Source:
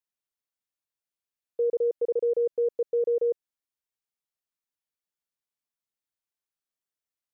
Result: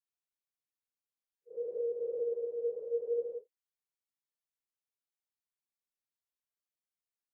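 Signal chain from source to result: phase scrambler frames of 0.2 s; gain -8 dB

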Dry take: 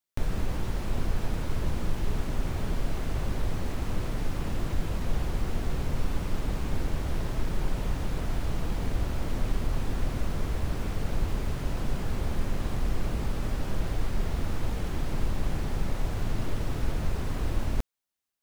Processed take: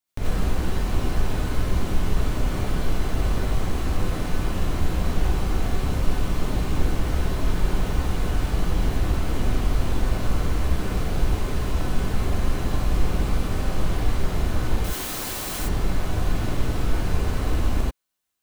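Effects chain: 14.84–15.59 RIAA curve recording; non-linear reverb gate 0.11 s rising, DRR -5.5 dB

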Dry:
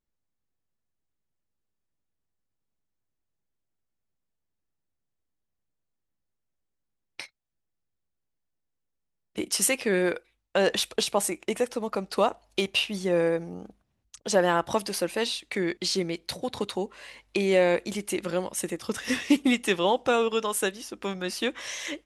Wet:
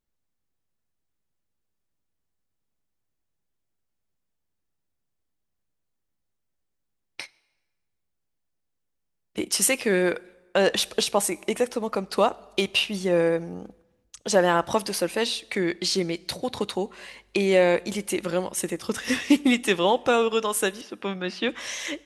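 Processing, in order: 20.81–21.49 Chebyshev band-pass 140–3400 Hz, order 2; on a send: reverb RT60 1.2 s, pre-delay 7 ms, DRR 23 dB; on the sum: gain +2.5 dB

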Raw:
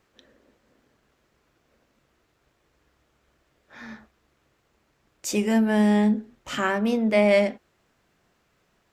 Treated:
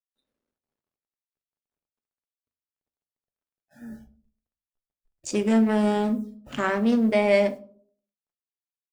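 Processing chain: Wiener smoothing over 41 samples; in parallel at +3 dB: limiter -16 dBFS, peak gain reduction 7.5 dB; on the sum: downsampling 22050 Hz; bit-crush 9-bit; 3.92–5.27 low shelf 87 Hz +12 dB; spectral noise reduction 26 dB; on a send at -8 dB: high shelf 5700 Hz +7 dB + reverb RT60 0.55 s, pre-delay 5 ms; on the sum: gain -6.5 dB

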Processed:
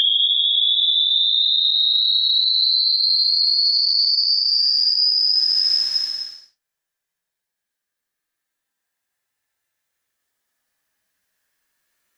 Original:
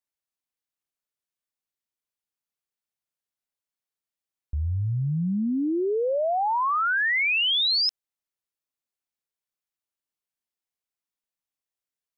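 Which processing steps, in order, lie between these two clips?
reverse echo 61 ms -8 dB; upward compressor, threshold -29 dBFS; Paulstretch 16×, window 0.10 s, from 7.53; limiter -17.5 dBFS, peak gain reduction 8 dB; bell 1700 Hz +12 dB 0.29 oct; gain +7.5 dB

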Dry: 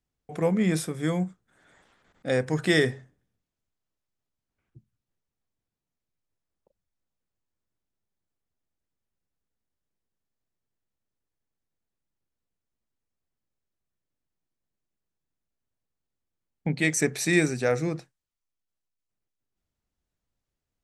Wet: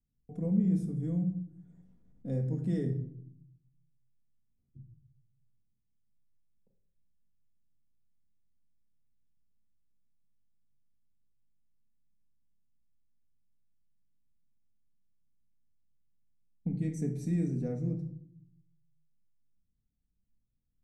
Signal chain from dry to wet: EQ curve 190 Hz 0 dB, 1400 Hz -30 dB, 4000 Hz -30 dB, 5900 Hz -23 dB; in parallel at +1 dB: compressor, threshold -41 dBFS, peak gain reduction 18.5 dB; on the sum: reverb RT60 0.65 s, pre-delay 4 ms, DRR 3 dB; gain -5.5 dB

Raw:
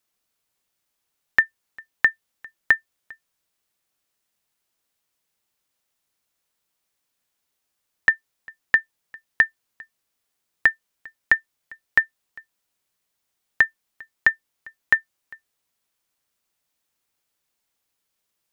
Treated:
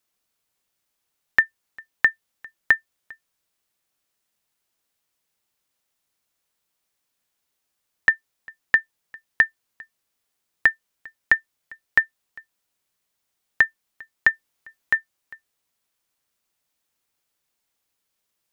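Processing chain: 14.31–14.94 transient shaper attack -4 dB, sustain +2 dB

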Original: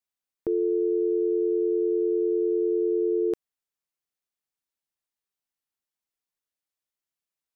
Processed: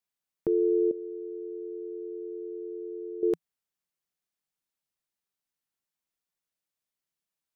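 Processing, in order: bell 170 Hz +6.5 dB 0.44 oct; 0.91–3.23 resonator 540 Hz, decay 0.59 s, mix 80%

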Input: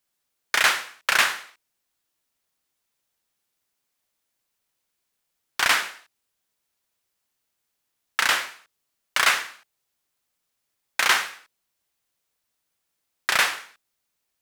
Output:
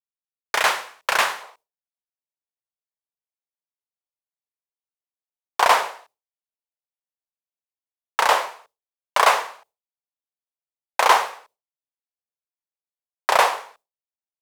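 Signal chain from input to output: expander -53 dBFS; band shelf 670 Hz +9 dB, from 1.41 s +16 dB; gain -2 dB

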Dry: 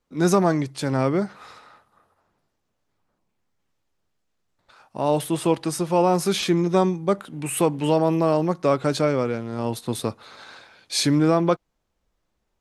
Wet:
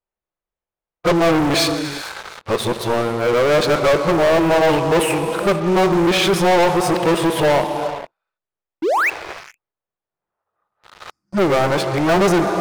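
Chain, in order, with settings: whole clip reversed; tone controls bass -8 dB, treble -14 dB; painted sound rise, 8.82–9.1, 280–2800 Hz -31 dBFS; non-linear reverb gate 0.49 s flat, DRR 11 dB; spectral gain 11.11–11.37, 350–4500 Hz -27 dB; sample leveller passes 5; bell 260 Hz -11.5 dB 0.3 oct; gain -2.5 dB

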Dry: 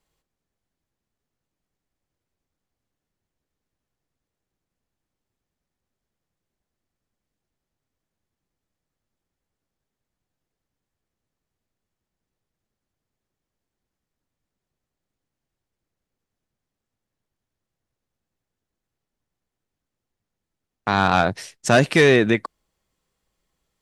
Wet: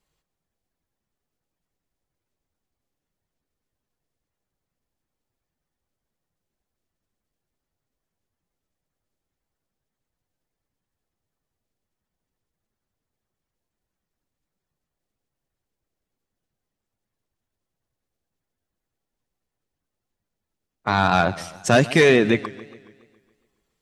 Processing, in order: bin magnitudes rounded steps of 15 dB; warbling echo 0.139 s, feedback 55%, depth 158 cents, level -18.5 dB

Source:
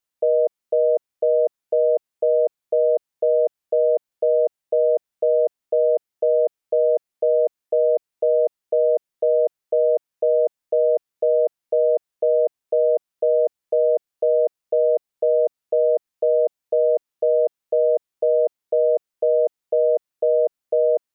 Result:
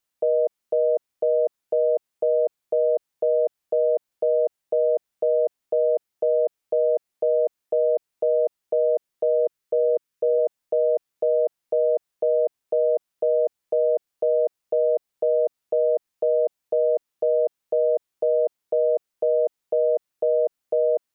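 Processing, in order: 9.37–10.38 bell 720 Hz -5 dB -> -12.5 dB 0.58 oct; limiter -17 dBFS, peak gain reduction 6 dB; gain +3 dB

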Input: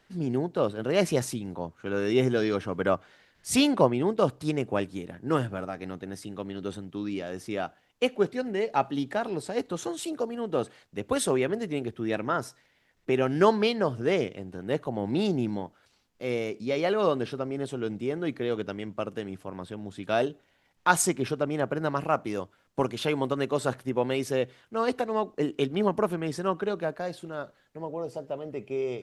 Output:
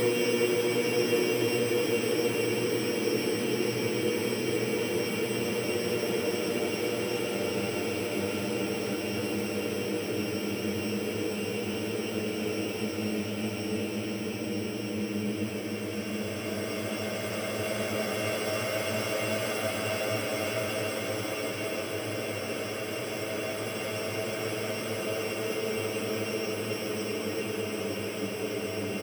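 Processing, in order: sample sorter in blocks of 16 samples; feedback echo 0.133 s, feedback 59%, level -4.5 dB; Paulstretch 38×, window 0.25 s, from 18.5

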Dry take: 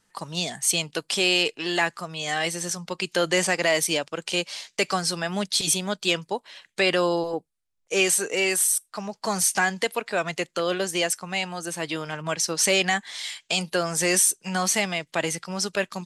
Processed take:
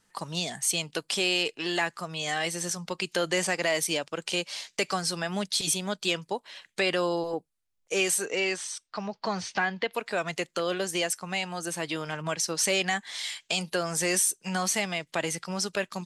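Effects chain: 8.25–9.93 LPF 6600 Hz -> 3800 Hz 24 dB/oct; in parallel at +2 dB: compressor, threshold -29 dBFS, peak gain reduction 12.5 dB; on the sum: gain -7.5 dB

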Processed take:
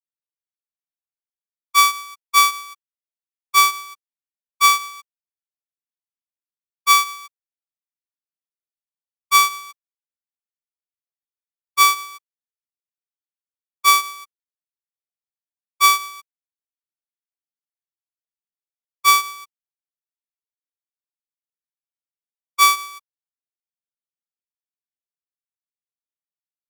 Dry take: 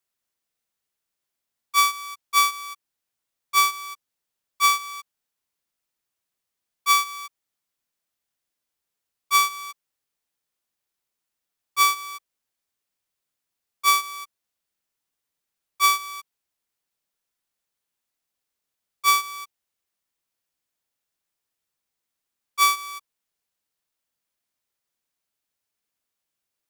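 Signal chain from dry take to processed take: expander -29 dBFS; gain +5 dB

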